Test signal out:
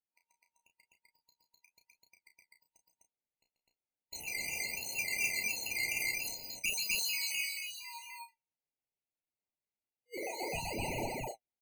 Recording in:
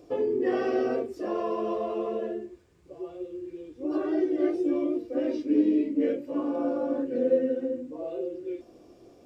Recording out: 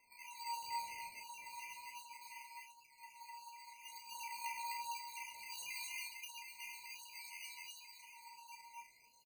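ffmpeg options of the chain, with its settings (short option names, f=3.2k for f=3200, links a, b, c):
-filter_complex "[0:a]afftfilt=real='re*(1-between(b*sr/4096,370,4200))':imag='im*(1-between(b*sr/4096,370,4200))':win_size=4096:overlap=0.75,asubboost=boost=11:cutoff=89,acrossover=split=370|3000[a][b][c];[b]acompressor=threshold=-29dB:ratio=3[d];[a][d][c]amix=inputs=3:normalize=0,aeval=exprs='val(0)*sin(2*PI*1300*n/s)':c=same,acrusher=samples=10:mix=1:aa=0.000001:lfo=1:lforange=6:lforate=1.4,flanger=delay=7.6:depth=6.8:regen=40:speed=1:shape=sinusoidal,asoftclip=type=tanh:threshold=-12dB,asplit=2[e][f];[f]adelay=33,volume=-7dB[g];[e][g]amix=inputs=2:normalize=0,aecho=1:1:137|253.6:0.316|1,afftfilt=real='re*eq(mod(floor(b*sr/1024/990),2),0)':imag='im*eq(mod(floor(b*sr/1024/990),2),0)':win_size=1024:overlap=0.75,volume=-5.5dB"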